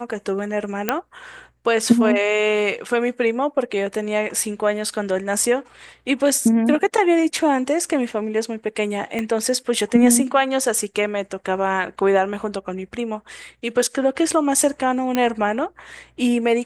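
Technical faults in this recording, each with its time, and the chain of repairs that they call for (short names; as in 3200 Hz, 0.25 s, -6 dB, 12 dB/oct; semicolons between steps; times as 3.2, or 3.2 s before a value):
0.89 pop -4 dBFS
9.19 pop -13 dBFS
15.15 pop -7 dBFS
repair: de-click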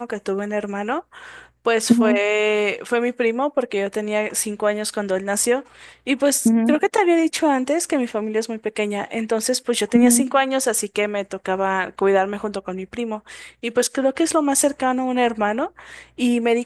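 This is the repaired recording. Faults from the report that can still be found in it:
9.19 pop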